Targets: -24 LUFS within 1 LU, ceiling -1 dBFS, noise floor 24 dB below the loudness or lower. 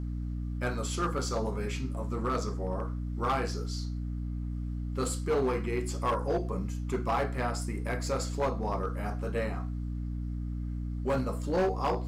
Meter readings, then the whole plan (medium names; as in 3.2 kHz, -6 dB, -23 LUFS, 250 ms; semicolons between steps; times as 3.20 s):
clipped samples 1.5%; clipping level -23.0 dBFS; hum 60 Hz; highest harmonic 300 Hz; hum level -32 dBFS; loudness -32.5 LUFS; peak level -23.0 dBFS; loudness target -24.0 LUFS
-> clip repair -23 dBFS; hum notches 60/120/180/240/300 Hz; trim +8.5 dB